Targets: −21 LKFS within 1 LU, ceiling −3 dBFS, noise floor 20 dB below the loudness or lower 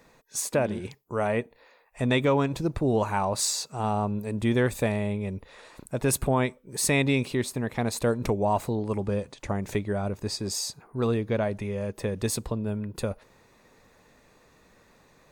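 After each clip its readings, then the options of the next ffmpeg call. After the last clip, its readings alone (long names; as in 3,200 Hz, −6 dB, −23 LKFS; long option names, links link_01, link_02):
integrated loudness −28.0 LKFS; sample peak −11.5 dBFS; target loudness −21.0 LKFS
→ -af "volume=7dB"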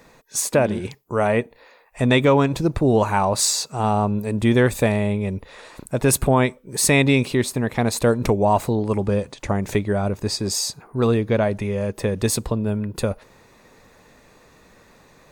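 integrated loudness −21.0 LKFS; sample peak −4.5 dBFS; background noise floor −53 dBFS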